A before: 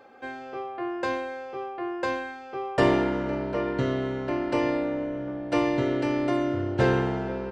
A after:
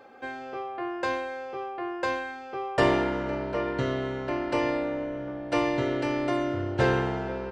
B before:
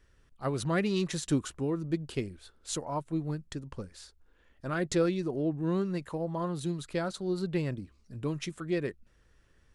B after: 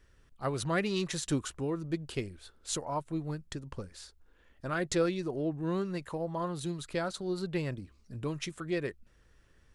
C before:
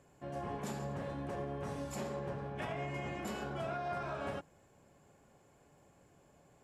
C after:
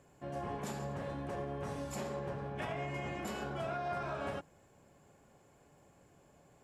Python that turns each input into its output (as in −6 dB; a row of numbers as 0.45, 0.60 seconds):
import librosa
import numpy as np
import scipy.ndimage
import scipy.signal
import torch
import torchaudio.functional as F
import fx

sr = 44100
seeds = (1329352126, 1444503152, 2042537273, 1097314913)

y = fx.dynamic_eq(x, sr, hz=220.0, q=0.71, threshold_db=-41.0, ratio=4.0, max_db=-5)
y = y * 10.0 ** (1.0 / 20.0)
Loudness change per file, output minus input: −1.5, −2.0, +0.5 LU